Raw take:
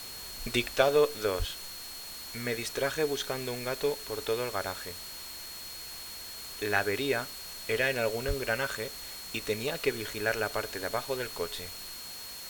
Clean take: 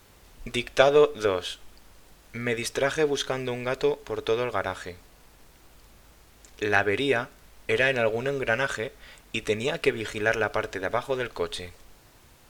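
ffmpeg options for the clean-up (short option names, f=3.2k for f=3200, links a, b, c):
-filter_complex "[0:a]bandreject=f=4.3k:w=30,asplit=3[a][b][c];[a]afade=t=out:st=1.38:d=0.02[d];[b]highpass=f=140:w=0.5412,highpass=f=140:w=1.3066,afade=t=in:st=1.38:d=0.02,afade=t=out:st=1.5:d=0.02[e];[c]afade=t=in:st=1.5:d=0.02[f];[d][e][f]amix=inputs=3:normalize=0,asplit=3[g][h][i];[g]afade=t=out:st=8.27:d=0.02[j];[h]highpass=f=140:w=0.5412,highpass=f=140:w=1.3066,afade=t=in:st=8.27:d=0.02,afade=t=out:st=8.39:d=0.02[k];[i]afade=t=in:st=8.39:d=0.02[l];[j][k][l]amix=inputs=3:normalize=0,afwtdn=0.0063,asetnsamples=n=441:p=0,asendcmd='0.73 volume volume 5.5dB',volume=0dB"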